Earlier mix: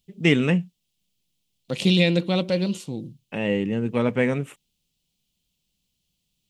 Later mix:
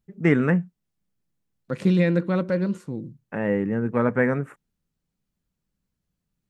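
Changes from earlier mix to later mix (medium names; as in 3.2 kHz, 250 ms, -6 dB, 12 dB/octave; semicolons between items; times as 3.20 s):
second voice: add peaking EQ 750 Hz -7.5 dB 0.48 oct; master: add resonant high shelf 2.2 kHz -11.5 dB, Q 3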